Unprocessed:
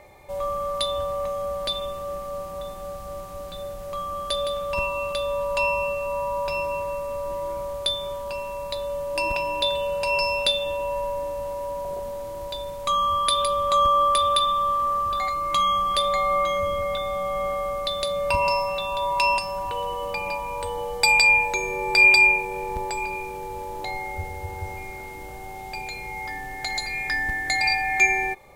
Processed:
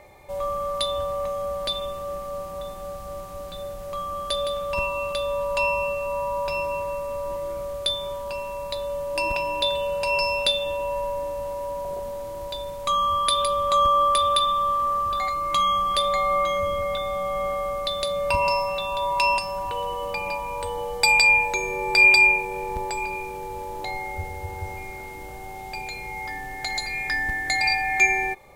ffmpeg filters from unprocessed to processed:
-filter_complex "[0:a]asettb=1/sr,asplit=3[a][b][c];[a]atrim=end=7.364[d];[b]atrim=start=7.36:end=7.9,asetpts=PTS-STARTPTS,afade=t=in:d=0.004:c=qsin,afade=t=out:st=0.536:d=0.004:c=qsin,asuperstop=centerf=890:order=4:qfactor=4.1[e];[c]atrim=start=7.896[f];[d][e]acrossfade=d=0.004:c1=hsin:c2=qsin[g];[g][f]acrossfade=d=0.004:c1=qsin:c2=hsin"

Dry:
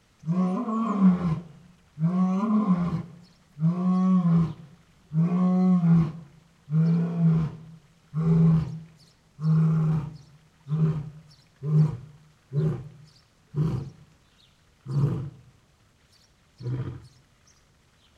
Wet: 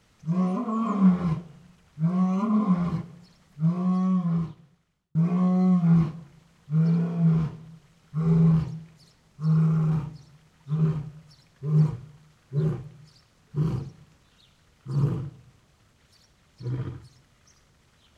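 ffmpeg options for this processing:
-filter_complex "[0:a]asplit=2[a][b];[a]atrim=end=5.15,asetpts=PTS-STARTPTS,afade=t=out:st=3.77:d=1.38[c];[b]atrim=start=5.15,asetpts=PTS-STARTPTS,afade=t=in:d=0.004:c=hsin[d];[c][d]concat=n=2:v=0:a=1"

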